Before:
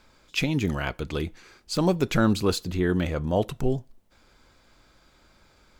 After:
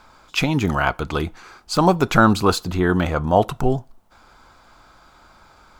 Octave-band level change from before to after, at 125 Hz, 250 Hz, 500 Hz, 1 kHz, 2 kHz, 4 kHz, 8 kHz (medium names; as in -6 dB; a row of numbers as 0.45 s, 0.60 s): +5.0 dB, +5.0 dB, +6.0 dB, +13.5 dB, +8.5 dB, +5.0 dB, +5.0 dB